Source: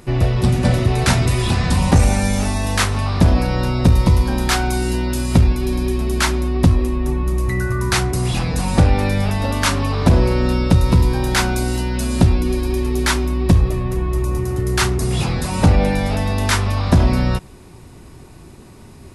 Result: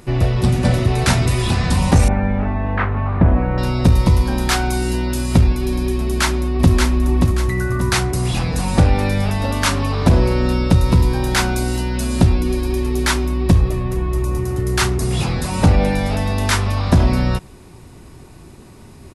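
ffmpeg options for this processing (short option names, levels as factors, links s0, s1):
-filter_complex "[0:a]asettb=1/sr,asplit=3[s0][s1][s2];[s0]atrim=end=2.084[s3];[s1]atrim=start=2.08:end=3.58,asetpts=PTS-STARTPTS,afade=t=in:d=0.004:c=qsin,afade=t=out:st=1.496:d=0.004:c=qsin,lowpass=f=2000:w=0.5412,lowpass=f=2000:w=1.3066[s4];[s2]atrim=start=3.576[s5];[s3][s4]acrossfade=d=0.004:c1=hsin:c2=qsin[s6];[s6][s5]acrossfade=d=0.004:c1=qsin:c2=hsin,asplit=2[s7][s8];[s8]afade=t=in:st=6.01:d=0.01,afade=t=out:st=6.73:d=0.01,aecho=0:1:580|1160|1740|2320|2900:0.668344|0.23392|0.0818721|0.0286552|0.0100293[s9];[s7][s9]amix=inputs=2:normalize=0"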